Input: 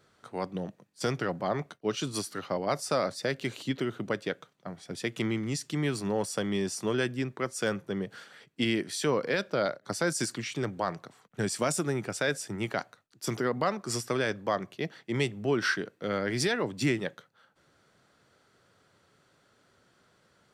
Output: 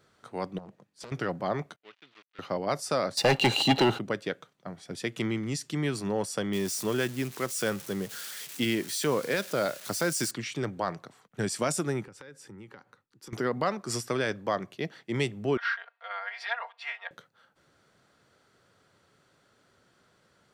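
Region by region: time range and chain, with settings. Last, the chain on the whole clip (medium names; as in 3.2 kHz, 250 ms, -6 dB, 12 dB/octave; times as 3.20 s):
0.58–1.12 s: treble shelf 7.8 kHz -7 dB + compression 10:1, threshold -40 dBFS + loudspeaker Doppler distortion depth 0.86 ms
1.76–2.39 s: dead-time distortion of 0.2 ms + low-pass 3.1 kHz 24 dB/octave + differentiator
3.17–3.99 s: high-pass 43 Hz + waveshaping leveller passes 3 + small resonant body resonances 810/2800/4000 Hz, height 17 dB, ringing for 35 ms
6.53–10.31 s: zero-crossing glitches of -28.5 dBFS + treble shelf 11 kHz -5.5 dB
12.03–13.33 s: treble shelf 2.4 kHz -10 dB + compression 5:1, threshold -45 dBFS + Butterworth band-stop 660 Hz, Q 3.4
15.57–17.11 s: steep high-pass 690 Hz 48 dB/octave + distance through air 370 m + comb 4.3 ms, depth 95%
whole clip: none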